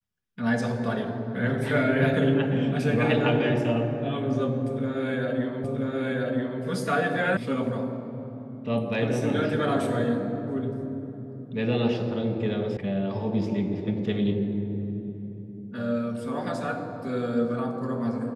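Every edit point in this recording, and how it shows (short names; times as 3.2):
5.64 repeat of the last 0.98 s
7.37 sound cut off
12.77 sound cut off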